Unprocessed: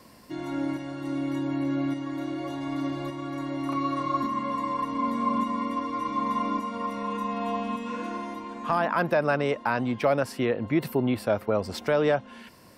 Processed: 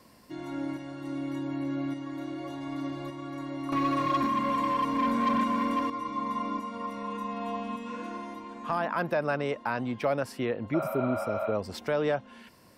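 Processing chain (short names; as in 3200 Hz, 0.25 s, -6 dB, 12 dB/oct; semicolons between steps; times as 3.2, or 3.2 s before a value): 3.72–5.9 sample leveller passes 2; 10.77–11.49 spectral repair 540–4800 Hz after; gain -4.5 dB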